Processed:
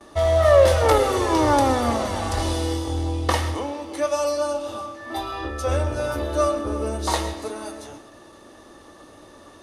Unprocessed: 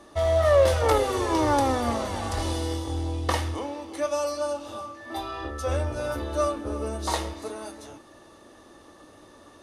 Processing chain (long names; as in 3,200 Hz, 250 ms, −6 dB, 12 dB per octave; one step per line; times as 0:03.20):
noise gate with hold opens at −42 dBFS
on a send: convolution reverb RT60 0.45 s, pre-delay 80 ms, DRR 12 dB
on the sum: level +4 dB